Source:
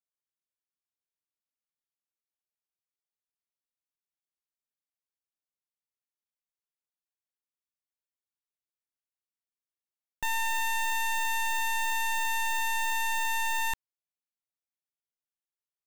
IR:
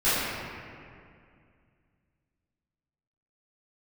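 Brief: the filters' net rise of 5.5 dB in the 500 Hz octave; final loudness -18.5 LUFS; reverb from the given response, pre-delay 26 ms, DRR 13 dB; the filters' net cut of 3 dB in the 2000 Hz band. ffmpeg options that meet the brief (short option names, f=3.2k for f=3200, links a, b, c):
-filter_complex "[0:a]equalizer=f=500:t=o:g=7,equalizer=f=2k:t=o:g=-4,asplit=2[a][b];[1:a]atrim=start_sample=2205,adelay=26[c];[b][c]afir=irnorm=-1:irlink=0,volume=-29.5dB[d];[a][d]amix=inputs=2:normalize=0,volume=12dB"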